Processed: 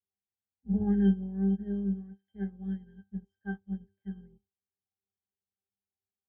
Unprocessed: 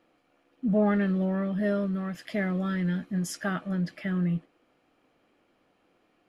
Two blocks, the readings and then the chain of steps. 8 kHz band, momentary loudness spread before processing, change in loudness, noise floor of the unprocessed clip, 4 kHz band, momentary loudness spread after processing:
under -35 dB, 7 LU, -3.0 dB, -69 dBFS, under -15 dB, 18 LU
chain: octaver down 2 oct, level 0 dB; octave resonator G, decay 0.29 s; upward expander 2.5:1, over -49 dBFS; gain +9 dB

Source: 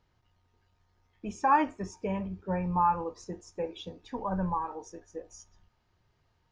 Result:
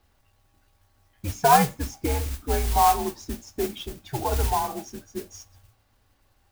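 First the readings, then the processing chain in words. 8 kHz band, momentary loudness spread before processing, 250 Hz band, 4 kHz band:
n/a, 19 LU, +2.0 dB, +15.0 dB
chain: frequency shift -120 Hz; modulation noise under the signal 11 dB; gain +6.5 dB

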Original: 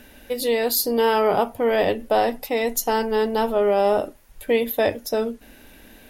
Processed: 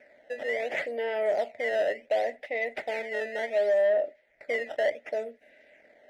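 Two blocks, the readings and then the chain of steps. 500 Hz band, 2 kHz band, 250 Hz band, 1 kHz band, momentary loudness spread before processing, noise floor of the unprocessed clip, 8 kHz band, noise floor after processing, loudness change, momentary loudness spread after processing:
-6.5 dB, -2.0 dB, -21.0 dB, -13.5 dB, 7 LU, -49 dBFS, under -20 dB, -65 dBFS, -7.5 dB, 10 LU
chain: decimation with a swept rate 11×, swing 160% 0.69 Hz; double band-pass 1100 Hz, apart 1.7 oct; sine folder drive 3 dB, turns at -14.5 dBFS; gain -5.5 dB

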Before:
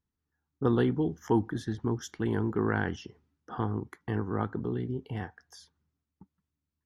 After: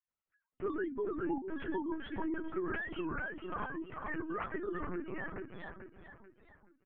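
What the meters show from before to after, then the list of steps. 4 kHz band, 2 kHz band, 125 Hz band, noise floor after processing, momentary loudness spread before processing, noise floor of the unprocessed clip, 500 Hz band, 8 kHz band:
-7.5 dB, -1.0 dB, -18.5 dB, under -85 dBFS, 12 LU, under -85 dBFS, -6.0 dB, under -30 dB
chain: sine-wave speech; treble ducked by the level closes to 1800 Hz, closed at -23.5 dBFS; tilt shelf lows -8.5 dB, about 880 Hz; doubler 18 ms -7 dB; dark delay 0.435 s, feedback 41%, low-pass 2300 Hz, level -5 dB; compressor 10:1, threshold -33 dBFS, peak gain reduction 13 dB; LPC vocoder at 8 kHz pitch kept; high shelf 2200 Hz -9 dB; record warp 33 1/3 rpm, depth 160 cents; gain +1 dB

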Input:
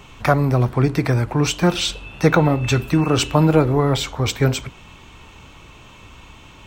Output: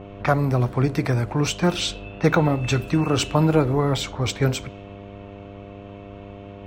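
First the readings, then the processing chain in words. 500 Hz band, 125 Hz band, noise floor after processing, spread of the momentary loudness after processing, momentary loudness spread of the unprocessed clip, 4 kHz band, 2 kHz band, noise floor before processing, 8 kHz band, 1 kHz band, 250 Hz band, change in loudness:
-3.5 dB, -3.5 dB, -40 dBFS, 21 LU, 6 LU, -3.5 dB, -3.5 dB, -44 dBFS, -3.5 dB, -3.5 dB, -3.5 dB, -3.5 dB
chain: buzz 100 Hz, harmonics 7, -36 dBFS -2 dB/oct; low-pass opened by the level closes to 1700 Hz, open at -15 dBFS; gain -3.5 dB

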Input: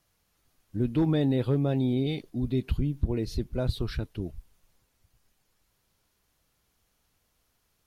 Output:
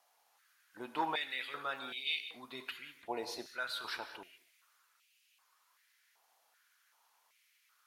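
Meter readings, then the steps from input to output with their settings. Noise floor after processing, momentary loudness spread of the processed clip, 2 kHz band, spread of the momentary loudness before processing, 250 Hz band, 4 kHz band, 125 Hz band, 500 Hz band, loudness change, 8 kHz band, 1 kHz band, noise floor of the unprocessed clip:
-74 dBFS, 12 LU, +6.5 dB, 10 LU, -22.5 dB, +3.0 dB, -37.0 dB, -14.0 dB, -11.0 dB, n/a, +5.5 dB, -74 dBFS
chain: non-linear reverb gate 0.23 s flat, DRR 8 dB; stepped high-pass 2.6 Hz 770–2600 Hz; gain -1 dB

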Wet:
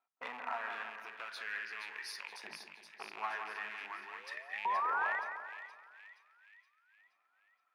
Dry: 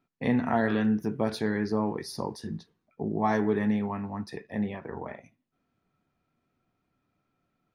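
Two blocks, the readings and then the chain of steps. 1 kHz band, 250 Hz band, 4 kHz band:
-3.5 dB, -36.5 dB, -4.0 dB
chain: rattling part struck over -30 dBFS, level -28 dBFS; compressor 5:1, threshold -30 dBFS, peak gain reduction 9.5 dB; sample leveller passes 1; vocal rider 2 s; one-sided clip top -27.5 dBFS; painted sound rise, 3.8–5.19, 270–2000 Hz -34 dBFS; LFO high-pass saw up 0.43 Hz 830–2200 Hz; tone controls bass -2 dB, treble -7 dB; on a send: split-band echo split 2100 Hz, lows 0.169 s, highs 0.472 s, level -7 dB; on the sum: gain -5.5 dB

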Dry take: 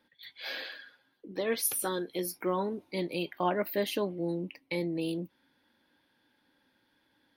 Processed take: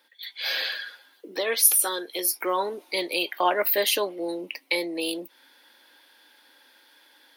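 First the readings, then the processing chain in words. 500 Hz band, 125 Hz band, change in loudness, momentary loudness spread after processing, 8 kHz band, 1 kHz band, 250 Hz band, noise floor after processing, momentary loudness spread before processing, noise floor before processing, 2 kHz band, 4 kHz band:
+4.5 dB, under -10 dB, +8.5 dB, 16 LU, +12.5 dB, +7.5 dB, -0.5 dB, -61 dBFS, 12 LU, -73 dBFS, +10.5 dB, +12.5 dB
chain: high shelf 3400 Hz +8.5 dB; in parallel at +0.5 dB: compressor, threshold -42 dBFS, peak gain reduction 22.5 dB; on the sum: Bessel high-pass 510 Hz, order 4; AGC gain up to 7 dB

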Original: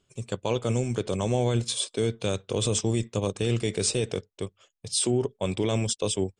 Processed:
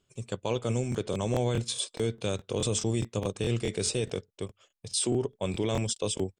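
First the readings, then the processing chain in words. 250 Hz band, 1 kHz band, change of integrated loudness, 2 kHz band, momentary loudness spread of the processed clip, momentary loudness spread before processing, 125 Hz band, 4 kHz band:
-3.0 dB, -3.0 dB, -3.0 dB, -3.0 dB, 8 LU, 8 LU, -3.0 dB, -3.0 dB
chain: crackling interface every 0.21 s, samples 1024, repeat, from 0.9; gain -3 dB

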